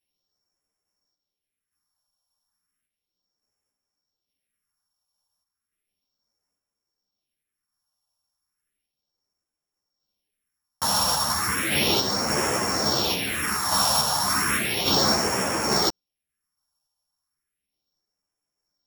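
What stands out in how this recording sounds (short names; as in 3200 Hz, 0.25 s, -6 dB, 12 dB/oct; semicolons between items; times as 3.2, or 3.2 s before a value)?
a buzz of ramps at a fixed pitch in blocks of 8 samples; phasing stages 4, 0.34 Hz, lowest notch 350–3800 Hz; random-step tremolo; a shimmering, thickened sound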